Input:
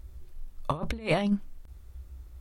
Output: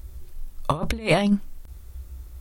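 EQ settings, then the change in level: high shelf 5700 Hz +7.5 dB; +6.0 dB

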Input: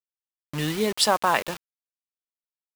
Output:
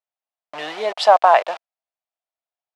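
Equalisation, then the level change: resonant high-pass 680 Hz, resonance Q 5.5; LPF 3800 Hz 12 dB/oct; +1.5 dB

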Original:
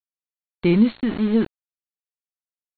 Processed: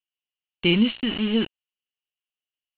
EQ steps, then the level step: synth low-pass 2900 Hz, resonance Q 13; -4.0 dB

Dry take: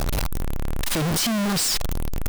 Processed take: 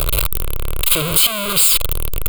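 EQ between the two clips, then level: high shelf 2500 Hz +11 dB; fixed phaser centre 1200 Hz, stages 8; +5.5 dB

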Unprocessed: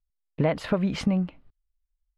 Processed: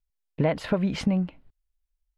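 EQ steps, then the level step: notch 1200 Hz, Q 11; 0.0 dB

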